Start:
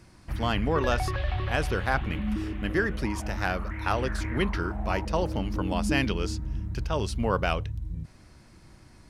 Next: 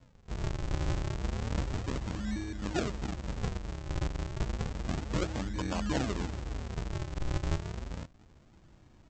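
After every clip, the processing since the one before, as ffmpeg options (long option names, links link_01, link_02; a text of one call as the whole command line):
ffmpeg -i in.wav -af "highshelf=frequency=4500:gain=-9,aresample=16000,acrusher=samples=39:mix=1:aa=0.000001:lfo=1:lforange=62.4:lforate=0.31,aresample=44100,volume=-5.5dB" out.wav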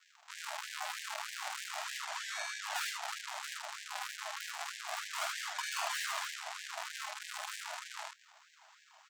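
ffmpeg -i in.wav -filter_complex "[0:a]aeval=exprs='(tanh(79.4*val(0)+0.75)-tanh(0.75))/79.4':channel_layout=same,asplit=2[link_01][link_02];[link_02]aecho=0:1:48|77:0.562|0.708[link_03];[link_01][link_03]amix=inputs=2:normalize=0,afftfilt=real='re*gte(b*sr/1024,590*pow(1600/590,0.5+0.5*sin(2*PI*3.2*pts/sr)))':imag='im*gte(b*sr/1024,590*pow(1600/590,0.5+0.5*sin(2*PI*3.2*pts/sr)))':win_size=1024:overlap=0.75,volume=11dB" out.wav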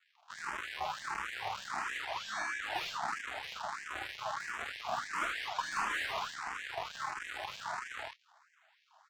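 ffmpeg -i in.wav -filter_complex "[0:a]asplit=2[link_01][link_02];[link_02]highpass=frequency=720:poles=1,volume=11dB,asoftclip=type=tanh:threshold=-22.5dB[link_03];[link_01][link_03]amix=inputs=2:normalize=0,lowpass=frequency=1300:poles=1,volume=-6dB,agate=range=-9dB:threshold=-50dB:ratio=16:detection=peak,asplit=2[link_04][link_05];[link_05]afreqshift=1.5[link_06];[link_04][link_06]amix=inputs=2:normalize=1,volume=5.5dB" out.wav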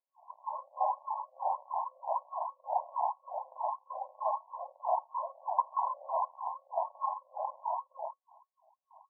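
ffmpeg -i in.wav -af "afftfilt=real='re*between(b*sr/4096,510,1100)':imag='im*between(b*sr/4096,510,1100)':win_size=4096:overlap=0.75,volume=8dB" out.wav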